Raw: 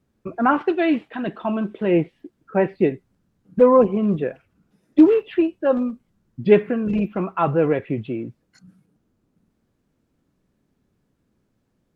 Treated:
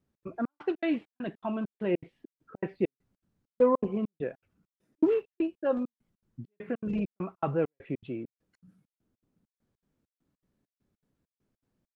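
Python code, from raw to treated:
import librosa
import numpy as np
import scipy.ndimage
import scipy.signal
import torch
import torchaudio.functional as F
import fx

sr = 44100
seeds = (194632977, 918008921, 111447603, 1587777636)

y = fx.step_gate(x, sr, bpm=200, pattern='xx.xxx..', floor_db=-60.0, edge_ms=4.5)
y = F.gain(torch.from_numpy(y), -9.0).numpy()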